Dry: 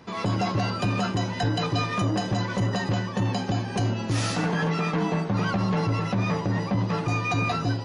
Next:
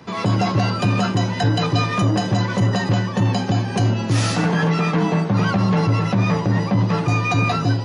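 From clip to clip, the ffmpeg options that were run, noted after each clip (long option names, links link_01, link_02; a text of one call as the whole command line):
ffmpeg -i in.wav -filter_complex "[0:a]highpass=110,acrossover=split=140[link_01][link_02];[link_01]acontrast=72[link_03];[link_03][link_02]amix=inputs=2:normalize=0,volume=5.5dB" out.wav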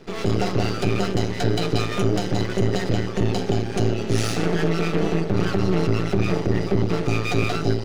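ffmpeg -i in.wav -af "aeval=exprs='max(val(0),0)':channel_layout=same,equalizer=frequency=400:width_type=o:width=0.33:gain=10,equalizer=frequency=1000:width_type=o:width=0.33:gain=-10,equalizer=frequency=1600:width_type=o:width=0.33:gain=-3" out.wav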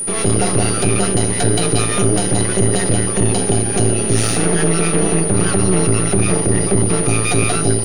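ffmpeg -i in.wav -filter_complex "[0:a]asplit=2[link_01][link_02];[link_02]alimiter=limit=-16.5dB:level=0:latency=1,volume=-1dB[link_03];[link_01][link_03]amix=inputs=2:normalize=0,aeval=exprs='val(0)+0.0794*sin(2*PI*9500*n/s)':channel_layout=same,volume=2dB" out.wav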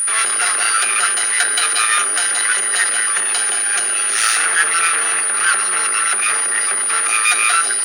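ffmpeg -i in.wav -filter_complex "[0:a]asplit=2[link_01][link_02];[link_02]acontrast=57,volume=0.5dB[link_03];[link_01][link_03]amix=inputs=2:normalize=0,highpass=frequency=1500:width_type=q:width=3,volume=-5.5dB" out.wav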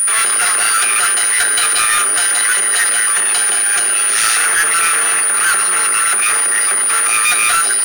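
ffmpeg -i in.wav -af "asoftclip=type=tanh:threshold=-14dB,volume=5.5dB" out.wav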